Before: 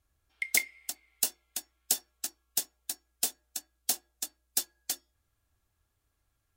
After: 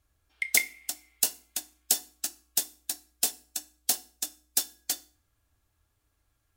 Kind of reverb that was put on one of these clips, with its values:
feedback delay network reverb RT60 0.41 s, low-frequency decay 1.5×, high-frequency decay 0.95×, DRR 13 dB
level +3 dB

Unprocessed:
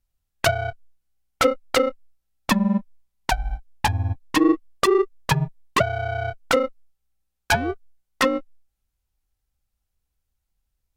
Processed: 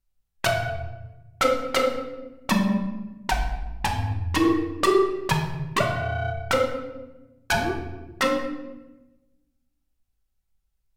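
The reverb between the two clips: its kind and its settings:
rectangular room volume 540 cubic metres, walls mixed, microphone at 1.1 metres
level −4 dB

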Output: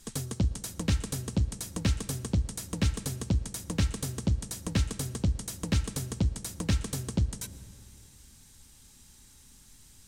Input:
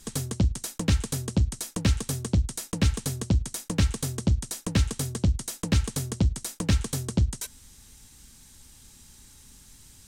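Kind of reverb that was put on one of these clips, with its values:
comb and all-pass reverb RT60 2.6 s, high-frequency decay 0.5×, pre-delay 80 ms, DRR 15.5 dB
level −4 dB

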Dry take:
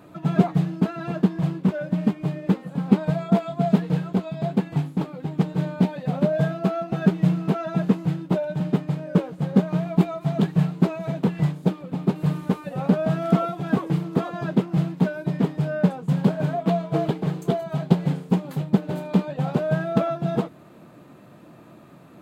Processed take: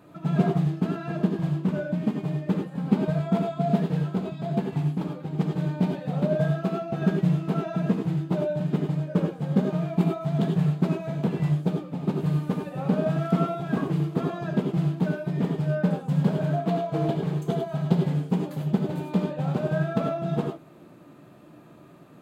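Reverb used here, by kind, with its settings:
reverb whose tail is shaped and stops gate 120 ms rising, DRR 3 dB
level −5 dB

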